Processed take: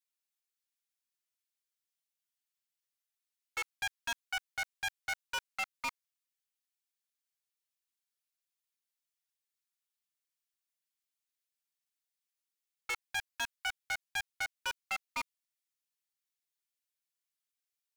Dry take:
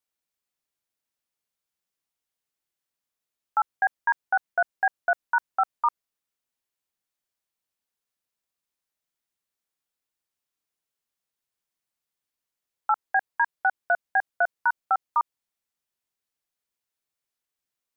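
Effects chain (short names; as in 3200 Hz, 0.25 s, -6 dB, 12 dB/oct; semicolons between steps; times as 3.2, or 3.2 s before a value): minimum comb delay 6.3 ms; Bessel high-pass 2000 Hz, order 2; wavefolder -26.5 dBFS; gain -2 dB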